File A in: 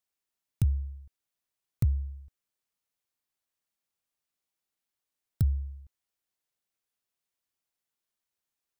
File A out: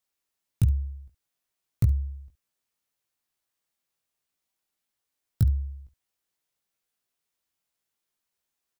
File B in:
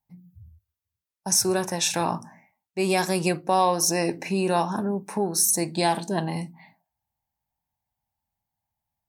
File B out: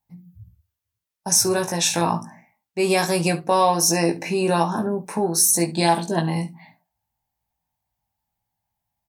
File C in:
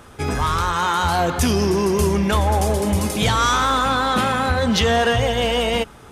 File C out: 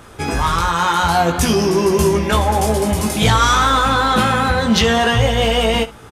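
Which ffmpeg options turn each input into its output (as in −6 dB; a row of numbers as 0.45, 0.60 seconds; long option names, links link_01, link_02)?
-af "aecho=1:1:18|69:0.596|0.141,volume=2.5dB"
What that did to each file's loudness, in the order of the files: +4.0, +3.5, +3.5 LU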